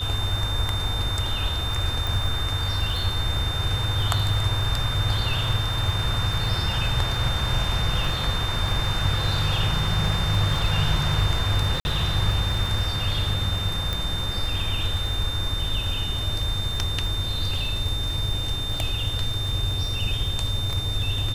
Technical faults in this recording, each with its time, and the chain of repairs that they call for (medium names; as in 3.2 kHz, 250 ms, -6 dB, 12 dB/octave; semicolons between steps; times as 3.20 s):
crackle 36 per s -31 dBFS
whine 3.6 kHz -29 dBFS
2.07 s: pop
11.80–11.85 s: dropout 50 ms
13.93 s: pop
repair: de-click; band-stop 3.6 kHz, Q 30; interpolate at 11.80 s, 50 ms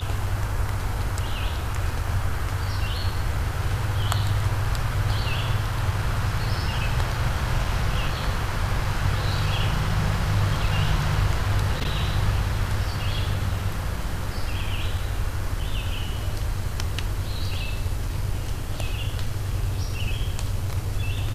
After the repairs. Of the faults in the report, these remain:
2.07 s: pop
13.93 s: pop